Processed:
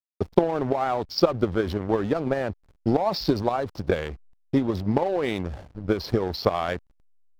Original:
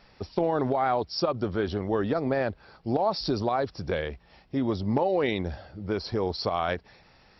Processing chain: transient shaper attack +11 dB, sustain +7 dB; hysteresis with a dead band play -31 dBFS; trim -1 dB

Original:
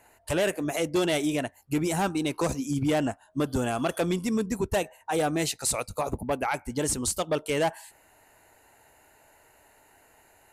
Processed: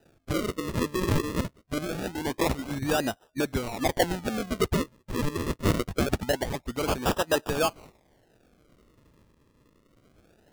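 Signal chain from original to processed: rotary cabinet horn 0.65 Hz; harmonic-percussive split harmonic -11 dB; decimation with a swept rate 40×, swing 100% 0.24 Hz; trim +5.5 dB

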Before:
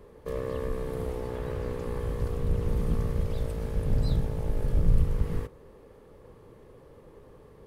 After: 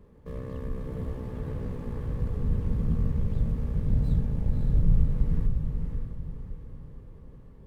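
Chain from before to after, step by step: median filter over 9 samples; resonant low shelf 300 Hz +7.5 dB, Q 1.5; echo that smears into a reverb 558 ms, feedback 43%, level -4.5 dB; trim -7.5 dB

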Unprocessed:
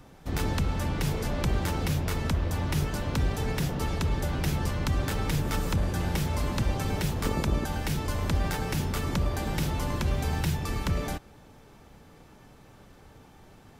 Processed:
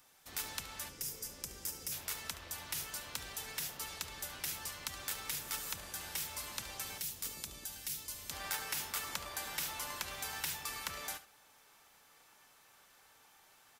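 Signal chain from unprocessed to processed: pre-emphasis filter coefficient 0.97; 0.89–1.92 s: time-frequency box 570–4700 Hz -10 dB; peaking EQ 1.1 kHz +4 dB 2.7 oct, from 6.98 s -6 dB, from 8.31 s +9 dB; delay 72 ms -14.5 dB

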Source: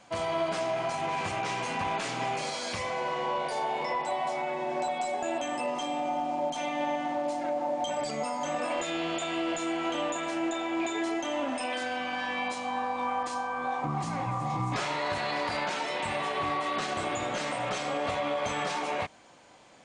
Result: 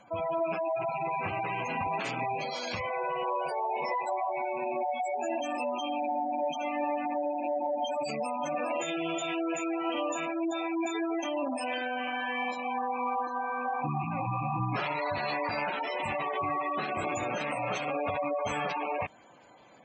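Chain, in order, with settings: rattle on loud lows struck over -45 dBFS, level -27 dBFS; spectral gate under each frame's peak -15 dB strong; Chebyshev shaper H 5 -41 dB, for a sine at -19.5 dBFS

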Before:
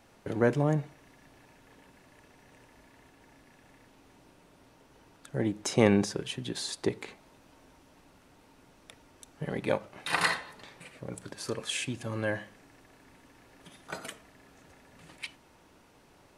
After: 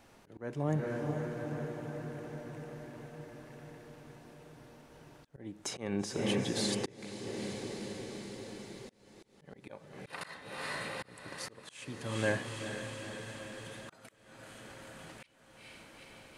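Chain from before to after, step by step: echo that smears into a reverb 451 ms, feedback 72%, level -9.5 dB; slow attack 571 ms

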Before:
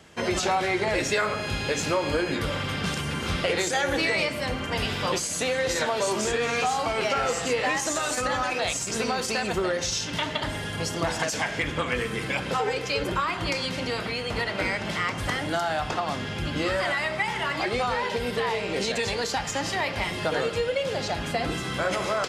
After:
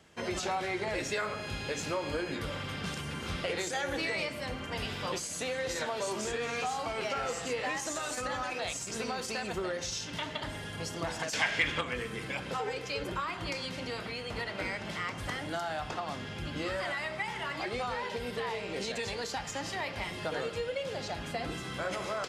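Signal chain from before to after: 11.33–11.81 s: peaking EQ 2.8 kHz +10 dB 2.8 oct; trim -8.5 dB

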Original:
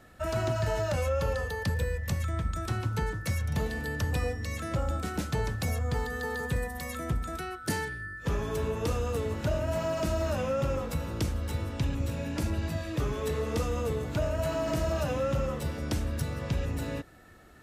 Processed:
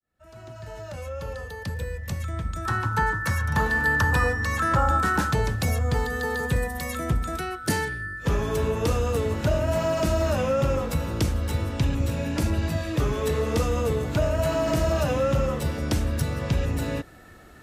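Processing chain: fade-in on the opening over 4.27 s; time-frequency box 2.65–5.32 s, 780–1900 Hz +11 dB; trim +6 dB

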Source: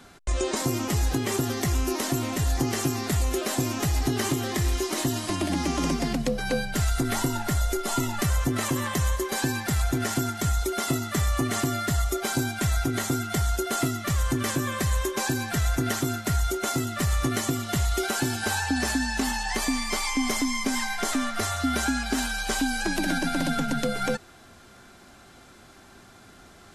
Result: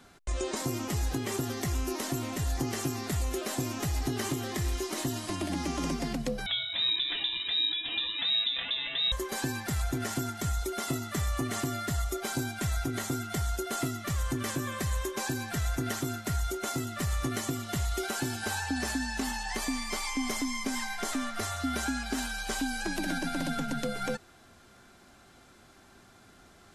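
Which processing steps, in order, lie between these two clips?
6.46–9.12 s: frequency inversion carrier 3.8 kHz; trim -6 dB

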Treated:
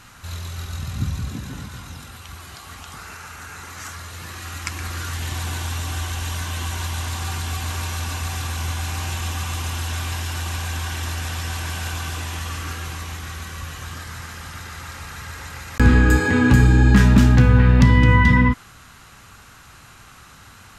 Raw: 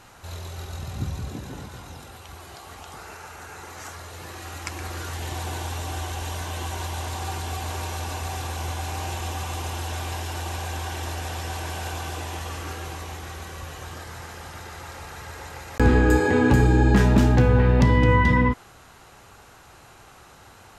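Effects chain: high-order bell 540 Hz -9 dB; trim +5 dB

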